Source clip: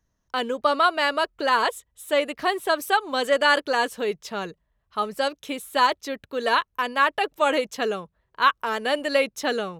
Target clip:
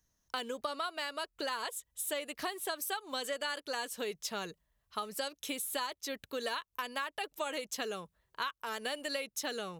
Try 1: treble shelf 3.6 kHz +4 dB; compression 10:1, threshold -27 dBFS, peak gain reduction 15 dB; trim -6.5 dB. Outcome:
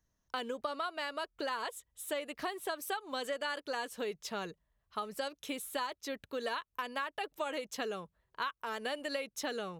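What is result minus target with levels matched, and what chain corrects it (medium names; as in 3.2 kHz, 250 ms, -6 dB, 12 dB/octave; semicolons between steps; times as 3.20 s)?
8 kHz band -5.0 dB
treble shelf 3.6 kHz +14 dB; compression 10:1, threshold -27 dBFS, peak gain reduction 16.5 dB; trim -6.5 dB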